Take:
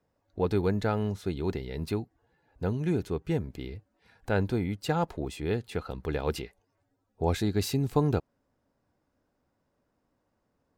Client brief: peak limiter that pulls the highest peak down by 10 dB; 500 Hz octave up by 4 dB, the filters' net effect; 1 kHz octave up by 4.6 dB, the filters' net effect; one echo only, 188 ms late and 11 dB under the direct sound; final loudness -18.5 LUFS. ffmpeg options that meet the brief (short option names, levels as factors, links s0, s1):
-af "equalizer=f=500:t=o:g=4,equalizer=f=1000:t=o:g=4.5,alimiter=limit=0.119:level=0:latency=1,aecho=1:1:188:0.282,volume=3.98"